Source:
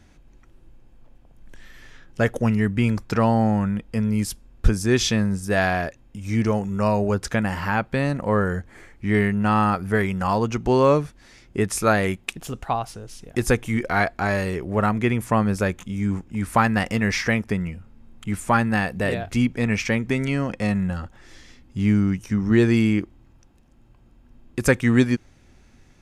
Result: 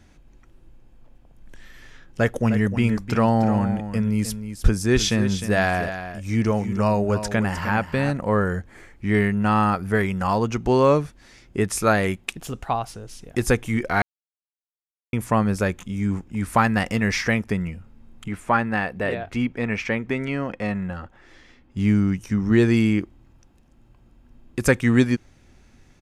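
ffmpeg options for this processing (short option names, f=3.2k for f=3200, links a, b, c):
-filter_complex "[0:a]asplit=3[a][b][c];[a]afade=t=out:st=2.39:d=0.02[d];[b]aecho=1:1:307:0.299,afade=t=in:st=2.39:d=0.02,afade=t=out:st=8.1:d=0.02[e];[c]afade=t=in:st=8.1:d=0.02[f];[d][e][f]amix=inputs=3:normalize=0,asettb=1/sr,asplit=3[g][h][i];[g]atrim=end=18.284[j];[h]atrim=start=18.28:end=21.77,asetpts=PTS-STARTPTS,afade=t=in:d=0.004:c=qsin,afade=t=out:st=3.486:d=0.004:c=qsin,bass=f=250:g=-6,treble=f=4k:g=-12[k];[i]atrim=start=21.766[l];[j][k]acrossfade=d=0.004:c1=hsin:c2=qsin[m];[m][l]acrossfade=d=0.004:c1=qsin:c2=hsin,asplit=3[n][o][p];[n]atrim=end=14.02,asetpts=PTS-STARTPTS,afade=t=out:st=14.016:d=0.004:c=hsin[q];[o]atrim=start=14.02:end=15.13,asetpts=PTS-STARTPTS,volume=0[r];[p]atrim=start=15.13,asetpts=PTS-STARTPTS,afade=t=in:d=0.004:c=hsin[s];[q][r][s]concat=n=3:v=0:a=1"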